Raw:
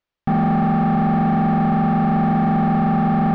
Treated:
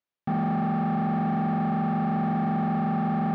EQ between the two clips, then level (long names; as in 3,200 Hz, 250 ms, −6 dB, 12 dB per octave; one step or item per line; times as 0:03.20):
high-pass filter 100 Hz 12 dB per octave
−8.0 dB